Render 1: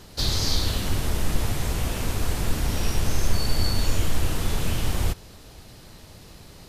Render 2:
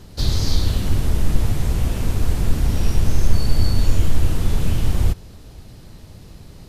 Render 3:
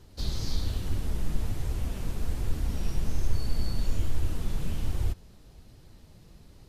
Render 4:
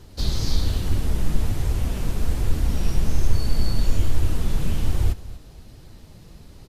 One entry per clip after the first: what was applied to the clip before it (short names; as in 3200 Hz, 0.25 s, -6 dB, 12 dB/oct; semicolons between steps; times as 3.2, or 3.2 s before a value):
low shelf 360 Hz +10 dB; gain -2.5 dB
flange 1.2 Hz, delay 2 ms, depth 4.3 ms, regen -52%; gain -7.5 dB
echo 0.242 s -17 dB; gain +7.5 dB